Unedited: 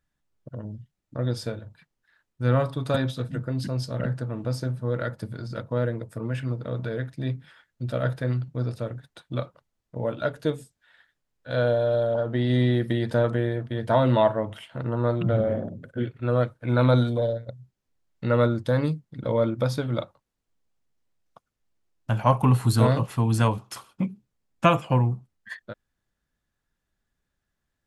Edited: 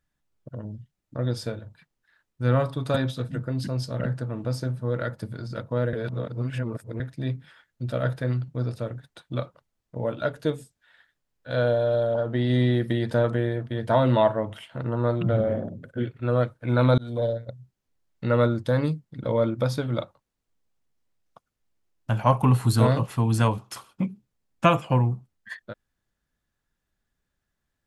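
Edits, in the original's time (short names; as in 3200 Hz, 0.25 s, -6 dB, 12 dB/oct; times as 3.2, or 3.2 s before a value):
5.93–7 reverse
16.98–17.24 fade in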